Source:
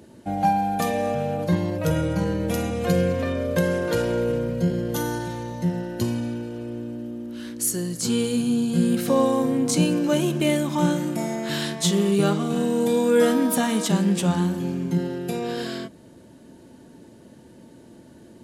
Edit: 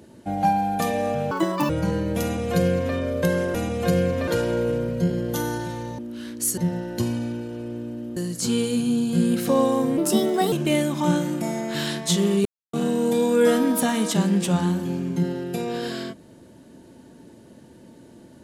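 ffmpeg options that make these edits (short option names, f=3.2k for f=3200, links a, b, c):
-filter_complex "[0:a]asplit=12[a][b][c][d][e][f][g][h][i][j][k][l];[a]atrim=end=1.314[m];[b]atrim=start=1.31:end=2.03,asetpts=PTS-STARTPTS,asetrate=82467,aresample=44100[n];[c]atrim=start=2.026:end=3.882[o];[d]atrim=start=2.558:end=3.292[p];[e]atrim=start=3.878:end=5.592[q];[f]atrim=start=7.178:end=7.772[r];[g]atrim=start=5.588:end=7.182[s];[h]atrim=start=7.768:end=9.584[t];[i]atrim=start=9.58:end=10.27,asetpts=PTS-STARTPTS,asetrate=55566,aresample=44100[u];[j]atrim=start=10.266:end=12.2,asetpts=PTS-STARTPTS,afade=t=out:st=1.93:d=0.004:c=hsin[v];[k]atrim=start=12.2:end=12.48,asetpts=PTS-STARTPTS,volume=0[w];[l]atrim=start=12.48,asetpts=PTS-STARTPTS,afade=t=in:d=0.004:c=hsin[x];[m][n]acrossfade=d=0.004:c1=hsin:c2=hsin[y];[y][o]acrossfade=d=0.004:c1=hsin:c2=hsin[z];[z][p]acrossfade=d=0.004:c1=hsin:c2=hsin[aa];[aa][q]acrossfade=d=0.004:c1=hsin:c2=hsin[ab];[ab][r]acrossfade=d=0.004:c1=hsin:c2=hsin[ac];[ac][s]acrossfade=d=0.004:c1=hsin:c2=hsin[ad];[ad][t]acrossfade=d=0.004:c1=hsin:c2=hsin[ae];[ae][u]acrossfade=d=0.004:c1=hsin:c2=hsin[af];[v][w][x]concat=n=3:v=0:a=1[ag];[af][ag]acrossfade=d=0.004:c1=hsin:c2=hsin"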